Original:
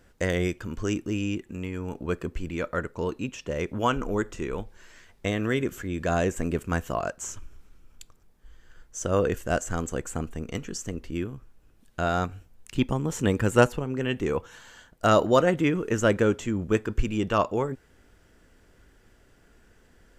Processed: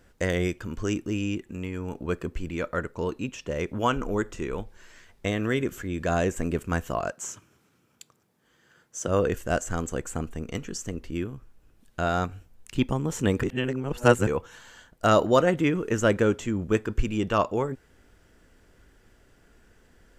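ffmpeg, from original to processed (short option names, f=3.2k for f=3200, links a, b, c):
-filter_complex "[0:a]asettb=1/sr,asplit=3[a][b][c];[a]atrim=end=7.124[d];[b]atrim=start=7.12:end=9.08,asetpts=PTS-STARTPTS,afade=t=in:d=0.004:c=qsin,afade=t=out:st=1.956:d=0.004:c=qsin,highpass=f=120:w=0.5412,highpass=f=120:w=1.3066[e];[c]atrim=start=9.076[f];[d][e]acrossfade=d=0.004:c1=hsin:c2=qsin[g];[g][f]acrossfade=d=0.004:c1=qsin:c2=hsin,asplit=3[h][i][j];[h]atrim=end=13.432[k];[i]atrim=start=13.428:end=14.272,asetpts=PTS-STARTPTS,areverse[l];[j]atrim=start=14.268[m];[k][l]acrossfade=d=0.004:c1=hsin:c2=hsin[n];[n][m]acrossfade=d=0.004:c1=hsin:c2=hsin"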